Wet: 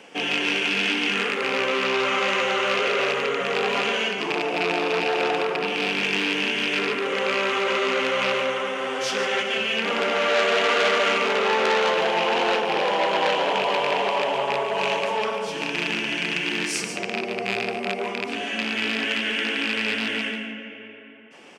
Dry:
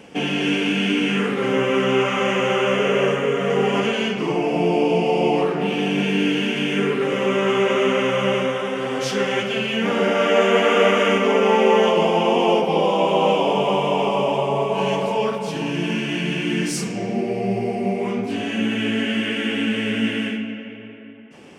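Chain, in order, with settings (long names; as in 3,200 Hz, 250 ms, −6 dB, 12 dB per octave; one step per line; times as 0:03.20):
loose part that buzzes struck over −24 dBFS, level −12 dBFS
meter weighting curve A
single-tap delay 145 ms −8.5 dB
saturating transformer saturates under 2,800 Hz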